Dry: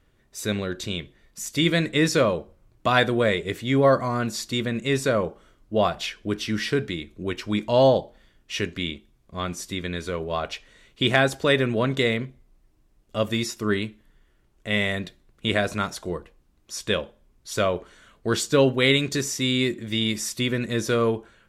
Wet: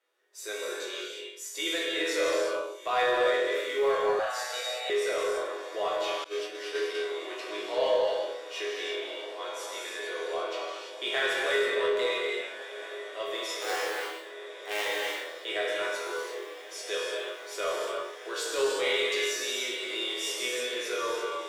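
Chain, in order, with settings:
0:13.51–0:14.85: sub-harmonics by changed cycles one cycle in 2, inverted
Butterworth high-pass 360 Hz 48 dB per octave
resonators tuned to a chord E2 major, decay 0.53 s
on a send: feedback delay with all-pass diffusion 1,410 ms, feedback 73%, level −15.5 dB
on the sum: reverb whose tail is shaped and stops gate 370 ms flat, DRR −2.5 dB
0:04.19–0:04.90: frequency shifter +130 Hz
0:06.24–0:06.95: downward expander −34 dBFS
in parallel at −4 dB: soft clipping −35 dBFS, distortion −9 dB
on the sum: level +3 dB

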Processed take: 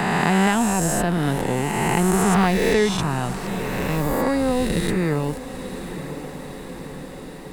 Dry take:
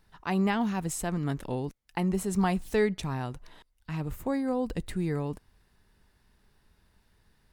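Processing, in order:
peak hold with a rise ahead of every peak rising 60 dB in 2.21 s
feedback delay with all-pass diffusion 1,001 ms, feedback 54%, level −16 dB
multiband upward and downward compressor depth 40%
level +6.5 dB

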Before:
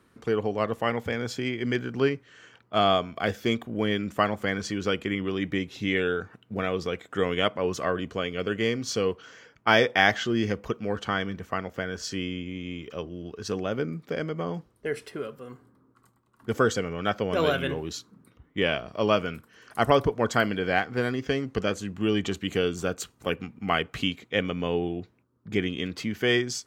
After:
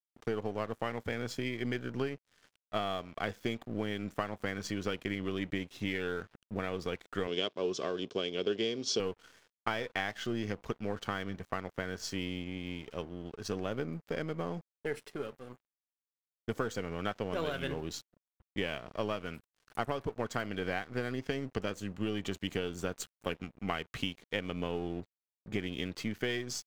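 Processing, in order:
gain on one half-wave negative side −3 dB
downward expander −51 dBFS
downward compressor 20 to 1, threshold −26 dBFS, peak gain reduction 13 dB
dead-zone distortion −50.5 dBFS
0:07.27–0:09.00: loudspeaker in its box 170–7,700 Hz, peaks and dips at 390 Hz +9 dB, 860 Hz −5 dB, 1,300 Hz −5 dB, 1,900 Hz −8 dB, 3,400 Hz +9 dB, 5,300 Hz +7 dB
level −2.5 dB

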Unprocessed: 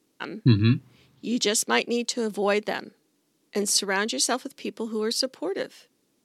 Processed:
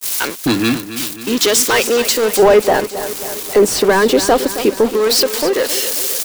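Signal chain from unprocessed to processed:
spike at every zero crossing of −22 dBFS
high-pass filter 390 Hz 12 dB per octave
high-shelf EQ 4,100 Hz −7.5 dB
noise gate −36 dBFS, range −25 dB
leveller curve on the samples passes 5
0:02.39–0:04.91: tilt shelving filter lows +7.5 dB, about 1,200 Hz
repeating echo 269 ms, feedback 60%, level −12.5 dB

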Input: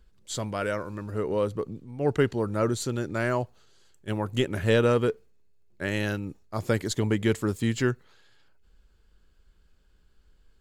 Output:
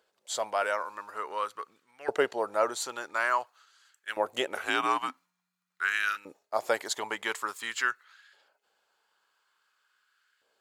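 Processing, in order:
0:04.55–0:06.16: frequency shifter −180 Hz
auto-filter high-pass saw up 0.48 Hz 580–1,600 Hz

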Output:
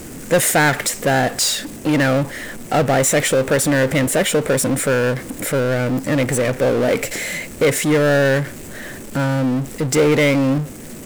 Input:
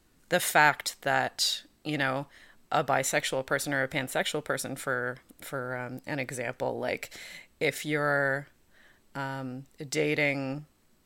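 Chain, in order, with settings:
bit reduction 11 bits
graphic EQ with 10 bands 125 Hz +7 dB, 250 Hz +7 dB, 500 Hz +8 dB, 1,000 Hz −5 dB, 2,000 Hz +4 dB, 4,000 Hz −7 dB, 8,000 Hz +7 dB
power curve on the samples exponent 0.5

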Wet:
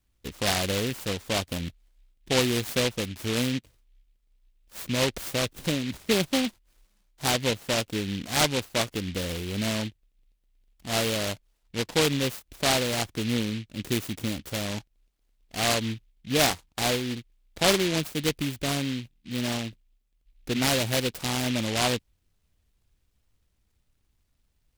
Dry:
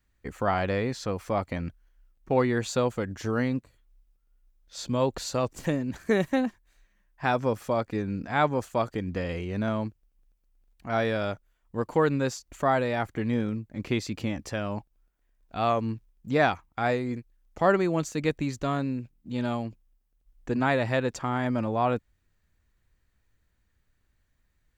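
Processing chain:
short delay modulated by noise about 2,800 Hz, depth 0.21 ms

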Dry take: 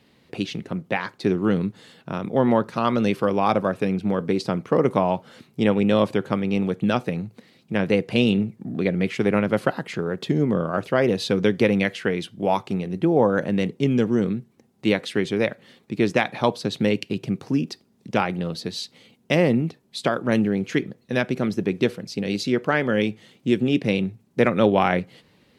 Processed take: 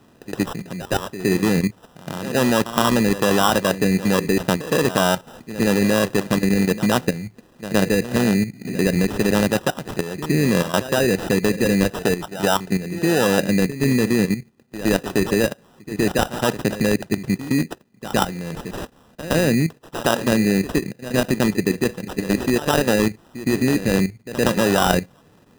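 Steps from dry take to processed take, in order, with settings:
output level in coarse steps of 12 dB
decimation without filtering 20×
backwards echo 116 ms −13.5 dB
level +7 dB

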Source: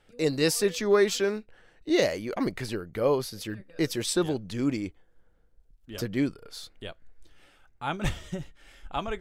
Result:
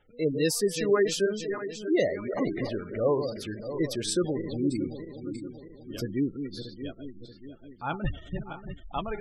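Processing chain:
feedback delay that plays each chunk backwards 316 ms, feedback 67%, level −8 dB
gate on every frequency bin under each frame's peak −20 dB strong
level −1 dB

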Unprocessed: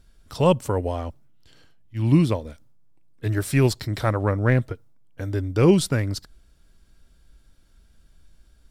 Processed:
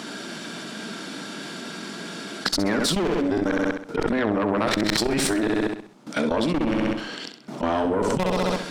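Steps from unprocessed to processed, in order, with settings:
played backwards from end to start
Butterworth high-pass 190 Hz 36 dB per octave
notch filter 530 Hz, Q 12
output level in coarse steps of 18 dB
high-frequency loss of the air 76 metres
gain into a clipping stage and back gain 22.5 dB
harmonic generator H 4 −13 dB, 7 −30 dB, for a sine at −19 dBFS
on a send: flutter between parallel walls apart 11.2 metres, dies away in 0.48 s
on the sum: envelope flattener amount 100%

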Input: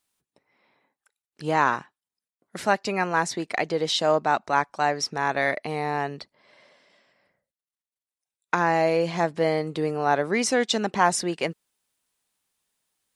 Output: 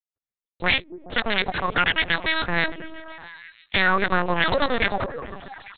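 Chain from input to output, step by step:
noise gate −58 dBFS, range −40 dB
high-pass filter 63 Hz 24 dB per octave
parametric band 460 Hz −8.5 dB 1.2 octaves
in parallel at +1.5 dB: speech leveller 2 s
on the sum: brickwall limiter −9.5 dBFS, peak gain reduction 9 dB
change of speed 2.28×
on a send: echo through a band-pass that steps 141 ms, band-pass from 190 Hz, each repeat 0.7 octaves, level −5 dB
on the sum: linear-prediction vocoder at 8 kHz pitch kept
level +2 dB

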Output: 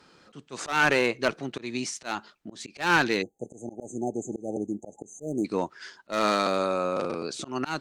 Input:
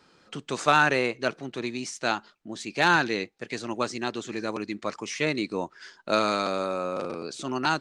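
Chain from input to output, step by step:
asymmetric clip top −20 dBFS, bottom −11.5 dBFS
time-frequency box erased 0:03.22–0:05.45, 860–6,100 Hz
volume swells 178 ms
level +2.5 dB

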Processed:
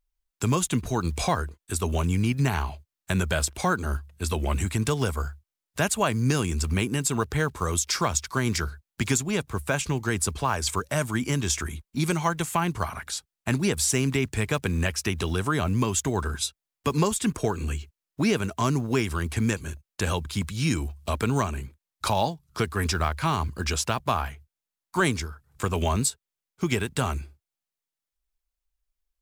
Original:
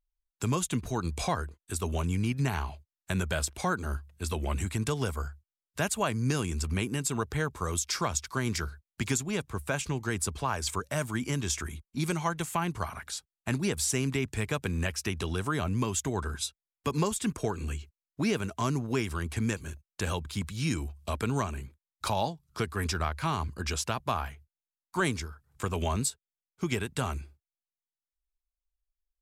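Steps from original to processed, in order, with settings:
one scale factor per block 7 bits
level +5 dB

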